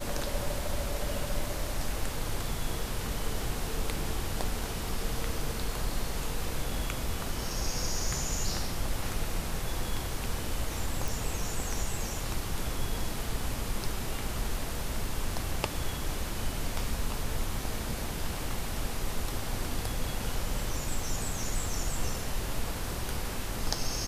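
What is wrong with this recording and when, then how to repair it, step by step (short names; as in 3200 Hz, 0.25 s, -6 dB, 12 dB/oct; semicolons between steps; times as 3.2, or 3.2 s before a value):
11.08 pop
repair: de-click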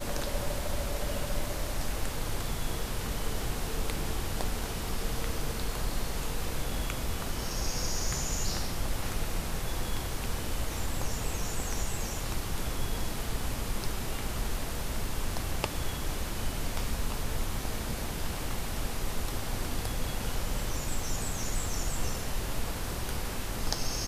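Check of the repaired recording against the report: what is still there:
none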